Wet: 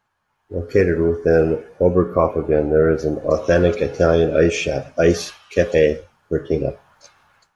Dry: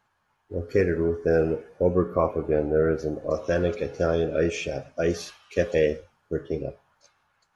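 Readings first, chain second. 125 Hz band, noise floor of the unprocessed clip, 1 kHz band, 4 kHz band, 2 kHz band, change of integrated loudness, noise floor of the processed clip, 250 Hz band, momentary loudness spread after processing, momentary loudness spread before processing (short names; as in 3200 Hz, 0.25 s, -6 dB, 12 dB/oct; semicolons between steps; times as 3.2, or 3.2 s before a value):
+7.5 dB, -72 dBFS, +7.0 dB, +8.5 dB, +7.5 dB, +7.5 dB, -70 dBFS, +7.5 dB, 8 LU, 10 LU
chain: AGC gain up to 14.5 dB; gain -1 dB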